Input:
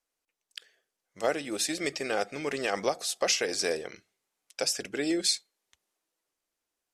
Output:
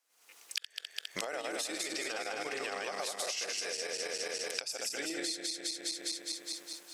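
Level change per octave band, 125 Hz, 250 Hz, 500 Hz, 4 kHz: -13.5, -10.0, -8.5, -3.0 dB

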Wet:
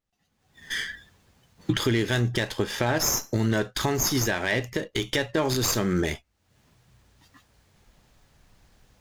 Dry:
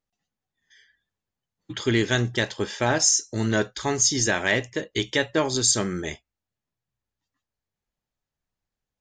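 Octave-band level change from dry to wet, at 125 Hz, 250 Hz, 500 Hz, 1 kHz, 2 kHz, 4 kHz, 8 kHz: +2.0, 0.0, -1.5, -1.0, -2.0, -2.0, -6.0 dB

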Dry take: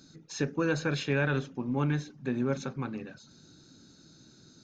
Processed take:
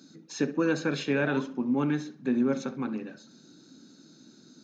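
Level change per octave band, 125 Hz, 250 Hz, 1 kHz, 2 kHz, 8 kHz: -5.0 dB, +5.0 dB, +1.0 dB, +0.5 dB, n/a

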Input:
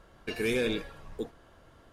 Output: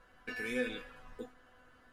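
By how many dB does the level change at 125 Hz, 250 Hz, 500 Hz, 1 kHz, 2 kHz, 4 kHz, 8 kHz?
-15.0, -8.0, -9.0, -5.0, -3.0, -9.5, -9.0 dB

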